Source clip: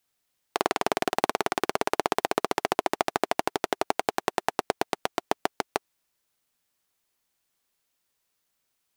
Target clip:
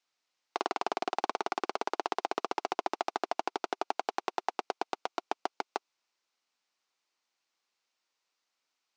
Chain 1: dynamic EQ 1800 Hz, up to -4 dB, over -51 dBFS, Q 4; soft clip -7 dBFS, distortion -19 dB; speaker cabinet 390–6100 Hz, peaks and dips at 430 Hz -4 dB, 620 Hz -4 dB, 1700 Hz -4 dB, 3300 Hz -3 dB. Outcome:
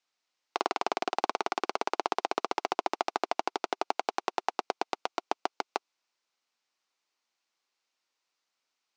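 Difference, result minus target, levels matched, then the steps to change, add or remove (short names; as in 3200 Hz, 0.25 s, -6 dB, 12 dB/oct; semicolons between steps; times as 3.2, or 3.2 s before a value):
soft clip: distortion -8 dB
change: soft clip -13.5 dBFS, distortion -11 dB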